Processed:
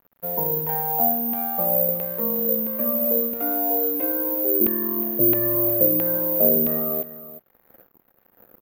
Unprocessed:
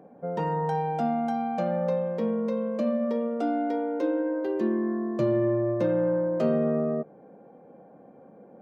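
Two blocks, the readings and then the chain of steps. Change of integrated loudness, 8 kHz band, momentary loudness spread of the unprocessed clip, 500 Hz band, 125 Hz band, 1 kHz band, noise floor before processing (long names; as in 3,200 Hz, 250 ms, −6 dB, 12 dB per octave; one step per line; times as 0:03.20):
+7.5 dB, can't be measured, 4 LU, +0.5 dB, −2.5 dB, −0.5 dB, −52 dBFS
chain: auto-filter low-pass saw down 1.5 Hz 300–2,700 Hz
dead-zone distortion −46 dBFS
on a send: single-tap delay 363 ms −15.5 dB
on the sum: bad sample-rate conversion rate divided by 3×, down none, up zero stuff
level −2.5 dB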